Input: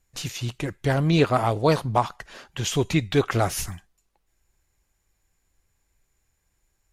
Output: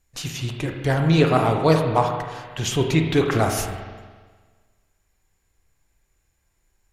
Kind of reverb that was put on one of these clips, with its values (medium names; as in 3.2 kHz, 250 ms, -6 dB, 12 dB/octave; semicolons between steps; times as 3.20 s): spring tank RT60 1.5 s, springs 31/44 ms, chirp 45 ms, DRR 3 dB; trim +1 dB